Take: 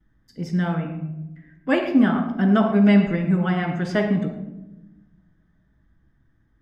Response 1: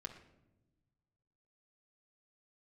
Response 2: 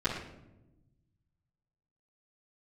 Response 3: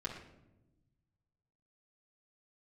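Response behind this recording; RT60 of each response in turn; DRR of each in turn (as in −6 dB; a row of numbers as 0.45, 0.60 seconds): 2; non-exponential decay, 0.95 s, 0.95 s; 0.5, −13.5, −5.5 decibels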